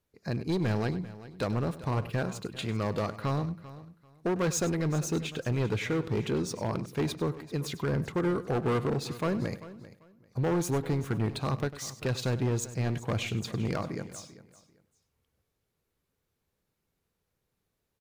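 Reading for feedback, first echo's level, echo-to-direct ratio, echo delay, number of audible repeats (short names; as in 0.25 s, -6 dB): no steady repeat, -15.5 dB, -13.0 dB, 99 ms, 4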